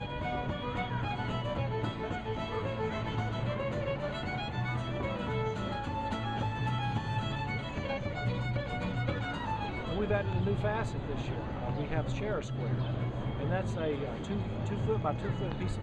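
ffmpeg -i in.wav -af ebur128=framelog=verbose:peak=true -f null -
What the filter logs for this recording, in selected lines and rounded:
Integrated loudness:
  I:         -34.2 LUFS
  Threshold: -44.2 LUFS
Loudness range:
  LRA:         1.1 LU
  Threshold: -54.2 LUFS
  LRA low:   -34.6 LUFS
  LRA high:  -33.5 LUFS
True peak:
  Peak:      -17.6 dBFS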